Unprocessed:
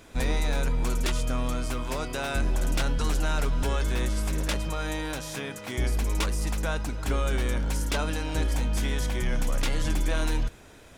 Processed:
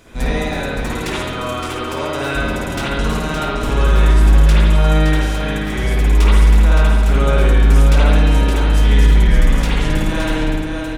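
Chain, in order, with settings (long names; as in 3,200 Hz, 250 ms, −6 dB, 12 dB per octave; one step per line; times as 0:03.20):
on a send: multi-tap delay 53/567 ms −11/−6 dB
on the sum: spring reverb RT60 1.3 s, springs 58 ms, chirp 30 ms, DRR −7 dB
level +2.5 dB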